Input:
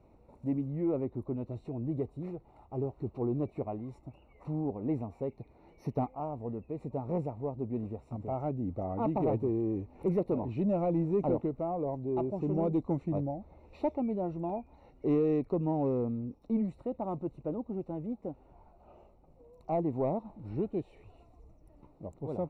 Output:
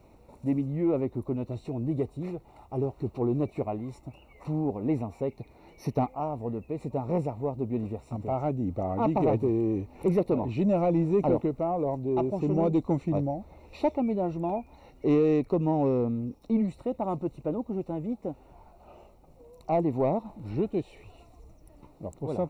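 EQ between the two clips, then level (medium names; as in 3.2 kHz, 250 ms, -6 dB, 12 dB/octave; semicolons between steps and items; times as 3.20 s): treble shelf 2.3 kHz +11.5 dB; +4.5 dB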